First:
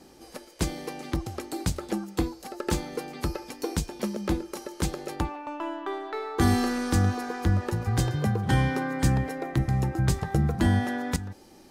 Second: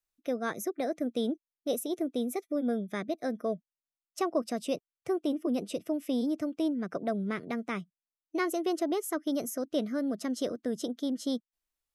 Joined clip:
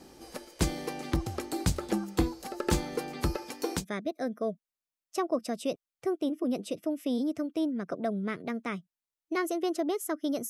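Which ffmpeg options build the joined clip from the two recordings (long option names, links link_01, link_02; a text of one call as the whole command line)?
ffmpeg -i cue0.wav -i cue1.wav -filter_complex "[0:a]asettb=1/sr,asplit=3[link_01][link_02][link_03];[link_01]atrim=end=3.364[link_04];[link_02]atrim=start=3.36:end=3.85,asetpts=PTS-STARTPTS,afade=type=in:duration=0.004:curve=qsin,afade=type=out:start_time=0.486:duration=0.004:curve=qsin,highpass=frequency=220:poles=1[link_05];[link_03]atrim=start=3.846[link_06];[link_04][link_05]acrossfade=duration=0.004:curve1=hsin:curve2=qsin[link_07];[link_07][link_06]acrossfade=duration=0.004:curve1=qsin:curve2=hsin,apad=whole_dur=10.49,atrim=end=10.49,atrim=end=3.85,asetpts=PTS-STARTPTS[link_08];[1:a]atrim=start=2.8:end=9.52,asetpts=PTS-STARTPTS[link_09];[link_08][link_09]acrossfade=duration=0.08:curve1=tri:curve2=tri" out.wav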